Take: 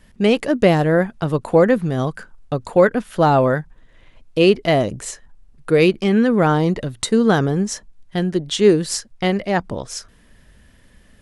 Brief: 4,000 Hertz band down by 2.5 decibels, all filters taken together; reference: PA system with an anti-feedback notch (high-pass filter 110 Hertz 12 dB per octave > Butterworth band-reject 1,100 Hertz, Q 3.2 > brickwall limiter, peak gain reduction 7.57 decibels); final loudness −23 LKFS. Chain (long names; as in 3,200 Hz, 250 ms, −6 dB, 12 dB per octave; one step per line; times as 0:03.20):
high-pass filter 110 Hz 12 dB per octave
Butterworth band-reject 1,100 Hz, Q 3.2
parametric band 4,000 Hz −3.5 dB
level −2.5 dB
brickwall limiter −12 dBFS